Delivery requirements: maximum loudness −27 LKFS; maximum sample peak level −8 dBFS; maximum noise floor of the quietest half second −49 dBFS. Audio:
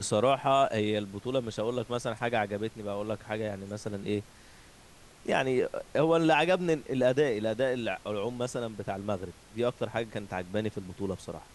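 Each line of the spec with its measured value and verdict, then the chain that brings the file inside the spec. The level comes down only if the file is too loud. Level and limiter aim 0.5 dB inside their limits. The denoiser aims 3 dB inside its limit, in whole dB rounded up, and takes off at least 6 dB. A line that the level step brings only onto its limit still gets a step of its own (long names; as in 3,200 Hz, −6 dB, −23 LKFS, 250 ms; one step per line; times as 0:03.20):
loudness −30.5 LKFS: in spec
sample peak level −12.5 dBFS: in spec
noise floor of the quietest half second −54 dBFS: in spec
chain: no processing needed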